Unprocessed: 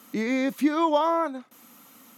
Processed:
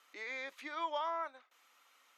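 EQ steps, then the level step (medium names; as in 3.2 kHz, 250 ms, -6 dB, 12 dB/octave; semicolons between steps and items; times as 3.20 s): high-pass 360 Hz 24 dB/octave; low-pass 2.3 kHz 12 dB/octave; differentiator; +4.5 dB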